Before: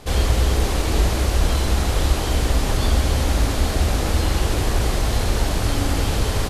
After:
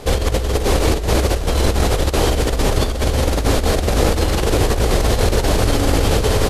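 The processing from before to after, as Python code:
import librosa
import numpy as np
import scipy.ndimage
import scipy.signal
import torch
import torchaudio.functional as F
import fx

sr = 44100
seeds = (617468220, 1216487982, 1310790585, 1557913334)

y = fx.peak_eq(x, sr, hz=470.0, db=7.0, octaves=0.81)
y = fx.over_compress(y, sr, threshold_db=-19.0, ratio=-0.5)
y = y * 10.0 ** (4.0 / 20.0)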